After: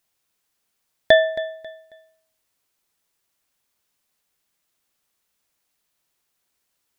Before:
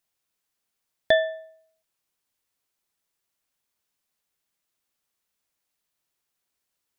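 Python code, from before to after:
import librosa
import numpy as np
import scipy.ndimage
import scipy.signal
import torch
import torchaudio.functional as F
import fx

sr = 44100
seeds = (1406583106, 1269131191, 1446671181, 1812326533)

y = fx.echo_feedback(x, sr, ms=271, feedback_pct=29, wet_db=-16)
y = y * librosa.db_to_amplitude(6.0)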